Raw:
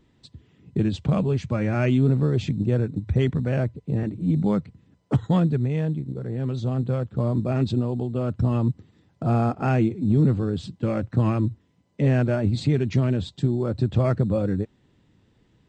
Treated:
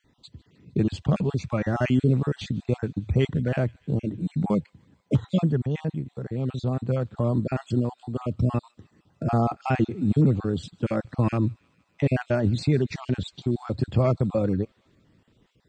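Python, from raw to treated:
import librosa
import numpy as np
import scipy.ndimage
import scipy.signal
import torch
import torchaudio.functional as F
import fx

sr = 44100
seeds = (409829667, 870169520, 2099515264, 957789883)

p1 = fx.spec_dropout(x, sr, seeds[0], share_pct=31)
p2 = fx.low_shelf(p1, sr, hz=210.0, db=-3.0)
p3 = p2 + fx.echo_wet_highpass(p2, sr, ms=153, feedback_pct=74, hz=2100.0, wet_db=-23.5, dry=0)
y = p3 * 10.0 ** (1.5 / 20.0)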